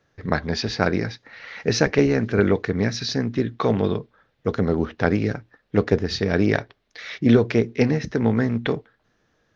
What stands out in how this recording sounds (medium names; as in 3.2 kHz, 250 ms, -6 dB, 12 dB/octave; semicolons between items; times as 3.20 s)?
noise floor -68 dBFS; spectral tilt -5.5 dB/octave